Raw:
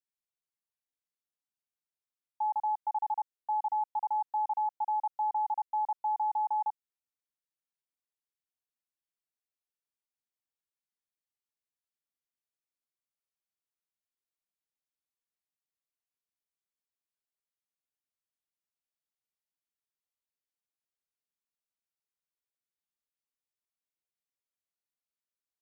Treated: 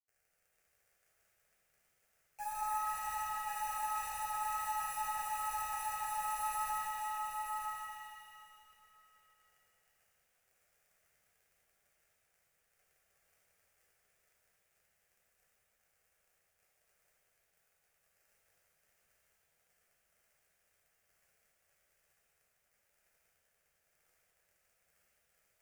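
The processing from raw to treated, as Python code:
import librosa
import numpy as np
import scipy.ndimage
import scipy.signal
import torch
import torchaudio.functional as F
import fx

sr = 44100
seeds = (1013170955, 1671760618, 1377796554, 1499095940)

p1 = fx.env_lowpass_down(x, sr, base_hz=550.0, full_db=-31.5)
p2 = fx.spec_topn(p1, sr, count=1)
p3 = fx.clip_asym(p2, sr, top_db=-46.5, bottom_db=-40.0)
p4 = p2 + (p3 * librosa.db_to_amplitude(-3.0))
p5 = fx.quant_dither(p4, sr, seeds[0], bits=8, dither='none')
p6 = fx.dmg_crackle(p5, sr, seeds[1], per_s=39.0, level_db=-56.0)
p7 = fx.fixed_phaser(p6, sr, hz=990.0, stages=6)
p8 = p7 + fx.echo_single(p7, sr, ms=948, db=-5.0, dry=0)
y = fx.rev_shimmer(p8, sr, seeds[2], rt60_s=2.6, semitones=7, shimmer_db=-8, drr_db=-8.0)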